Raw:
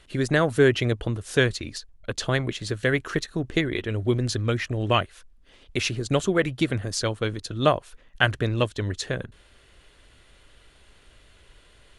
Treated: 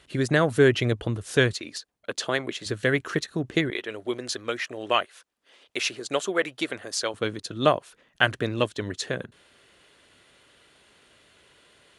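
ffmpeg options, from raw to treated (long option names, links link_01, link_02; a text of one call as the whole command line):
ffmpeg -i in.wav -af "asetnsamples=nb_out_samples=441:pad=0,asendcmd='1.53 highpass f 290;2.66 highpass f 120;3.7 highpass f 440;7.14 highpass f 160',highpass=78" out.wav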